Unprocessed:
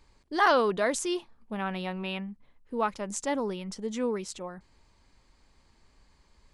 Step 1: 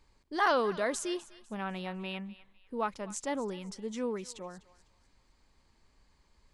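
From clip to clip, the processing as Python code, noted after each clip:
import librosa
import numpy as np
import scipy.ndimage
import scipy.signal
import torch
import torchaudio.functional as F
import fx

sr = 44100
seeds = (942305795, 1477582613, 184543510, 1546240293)

y = fx.echo_thinned(x, sr, ms=250, feedback_pct=35, hz=950.0, wet_db=-16.5)
y = y * 10.0 ** (-4.5 / 20.0)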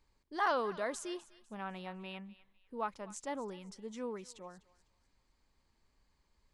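y = fx.dynamic_eq(x, sr, hz=960.0, q=0.96, threshold_db=-45.0, ratio=4.0, max_db=4)
y = y * 10.0 ** (-7.5 / 20.0)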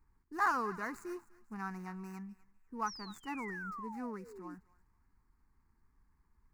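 y = scipy.ndimage.median_filter(x, 15, mode='constant')
y = fx.spec_paint(y, sr, seeds[0], shape='fall', start_s=2.86, length_s=1.69, low_hz=280.0, high_hz=6100.0, level_db=-48.0)
y = fx.fixed_phaser(y, sr, hz=1400.0, stages=4)
y = y * 10.0 ** (4.5 / 20.0)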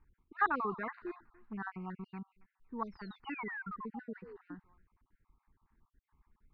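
y = fx.spec_dropout(x, sr, seeds[1], share_pct=43)
y = scipy.signal.sosfilt(scipy.signal.butter(8, 3700.0, 'lowpass', fs=sr, output='sos'), y)
y = y * 10.0 ** (2.5 / 20.0)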